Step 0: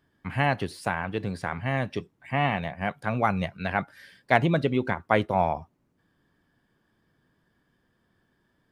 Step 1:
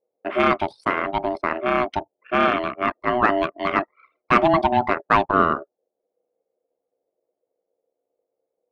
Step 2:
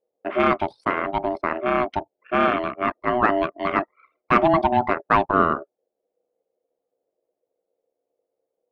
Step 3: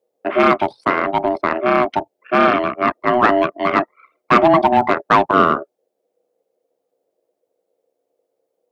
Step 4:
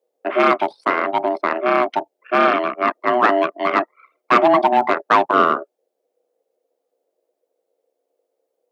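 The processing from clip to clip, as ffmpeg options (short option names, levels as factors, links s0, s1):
-filter_complex "[0:a]anlmdn=0.398,aeval=exprs='val(0)*sin(2*PI*490*n/s)':c=same,asplit=2[s0][s1];[s1]highpass=f=720:p=1,volume=5.01,asoftclip=type=tanh:threshold=0.596[s2];[s0][s2]amix=inputs=2:normalize=0,lowpass=f=1400:p=1,volume=0.501,volume=1.88"
-af "highshelf=f=3600:g=-9"
-filter_complex "[0:a]acrossover=split=110[s0][s1];[s0]aeval=exprs='(mod(84.1*val(0)+1,2)-1)/84.1':c=same[s2];[s1]acontrast=78[s3];[s2][s3]amix=inputs=2:normalize=0"
-af "highpass=290,volume=0.891"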